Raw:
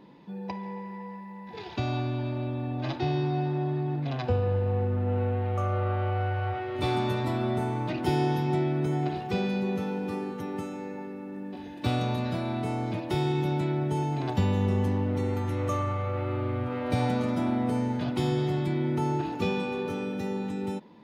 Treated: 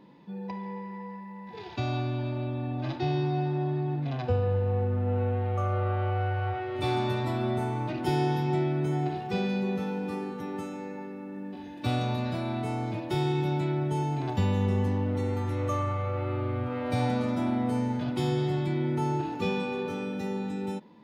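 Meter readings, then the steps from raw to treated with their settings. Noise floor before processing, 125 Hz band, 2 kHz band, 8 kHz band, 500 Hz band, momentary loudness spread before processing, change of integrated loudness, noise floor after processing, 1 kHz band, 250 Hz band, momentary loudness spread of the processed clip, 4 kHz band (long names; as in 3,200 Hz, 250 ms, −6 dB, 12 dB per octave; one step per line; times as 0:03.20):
−41 dBFS, −0.5 dB, −0.5 dB, can't be measured, −0.5 dB, 10 LU, −0.5 dB, −42 dBFS, −0.5 dB, −1.0 dB, 10 LU, −0.5 dB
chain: harmonic and percussive parts rebalanced percussive −7 dB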